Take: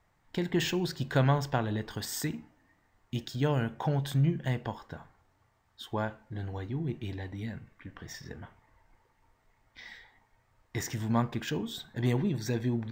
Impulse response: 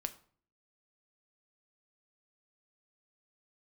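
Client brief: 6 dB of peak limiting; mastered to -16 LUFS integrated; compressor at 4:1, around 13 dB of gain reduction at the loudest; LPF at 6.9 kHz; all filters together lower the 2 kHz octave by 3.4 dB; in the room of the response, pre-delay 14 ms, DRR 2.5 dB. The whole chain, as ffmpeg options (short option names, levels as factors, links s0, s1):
-filter_complex "[0:a]lowpass=6900,equalizer=f=2000:t=o:g=-4.5,acompressor=threshold=0.0126:ratio=4,alimiter=level_in=2.82:limit=0.0631:level=0:latency=1,volume=0.355,asplit=2[s0][s1];[1:a]atrim=start_sample=2205,adelay=14[s2];[s1][s2]afir=irnorm=-1:irlink=0,volume=0.841[s3];[s0][s3]amix=inputs=2:normalize=0,volume=18.8"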